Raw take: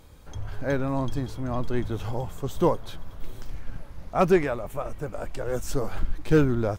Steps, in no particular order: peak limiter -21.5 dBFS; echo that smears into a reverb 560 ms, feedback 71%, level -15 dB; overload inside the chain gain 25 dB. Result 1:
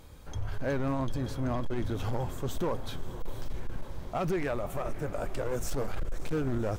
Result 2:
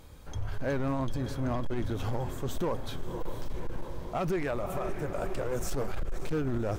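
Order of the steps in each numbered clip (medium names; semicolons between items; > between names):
peak limiter > echo that smears into a reverb > overload inside the chain; echo that smears into a reverb > peak limiter > overload inside the chain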